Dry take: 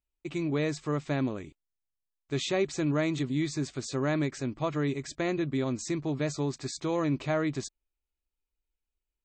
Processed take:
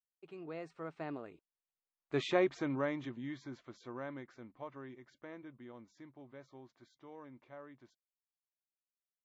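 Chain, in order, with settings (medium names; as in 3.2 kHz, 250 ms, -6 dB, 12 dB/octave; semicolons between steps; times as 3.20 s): Doppler pass-by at 2.20 s, 31 m/s, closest 11 m; low-pass 1.1 kHz 12 dB/octave; tilt EQ +4.5 dB/octave; trim +5 dB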